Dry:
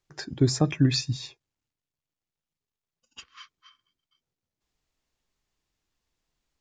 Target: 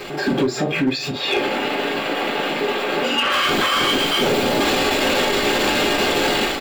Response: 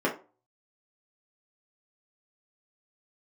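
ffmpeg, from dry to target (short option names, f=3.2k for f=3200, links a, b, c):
-filter_complex "[0:a]aeval=exprs='val(0)+0.5*0.0237*sgn(val(0))':c=same,asettb=1/sr,asplit=3[a][b][c];[a]atrim=end=1.114[d];[b]atrim=start=1.11:end=3.32,asetpts=PTS-STARTPTS,afade=t=in:d=0.004:c=qsin,afade=t=out:st=2.206:d=0.004:c=qsin,acrossover=split=200 3600:gain=0.224 1 0.251[e][f][g];[e][f][g]amix=inputs=3:normalize=0[h];[c]atrim=start=3.316[i];[d][h]acrossfade=d=0.004:c1=hsin:c2=qsin[j];[j][i]acrossfade=d=0.004:c1=qsin:c2=hsin,acompressor=threshold=-41dB:ratio=3,asplit=2[k][l];[l]adelay=42,volume=-11.5dB[m];[k][m]amix=inputs=2:normalize=0,dynaudnorm=f=110:g=5:m=15dB,alimiter=limit=-23dB:level=0:latency=1:release=37,equalizer=f=3.3k:w=1.5:g=4[n];[1:a]atrim=start_sample=2205,asetrate=61740,aresample=44100[o];[n][o]afir=irnorm=-1:irlink=0,asoftclip=type=hard:threshold=-14.5dB,volume=1.5dB"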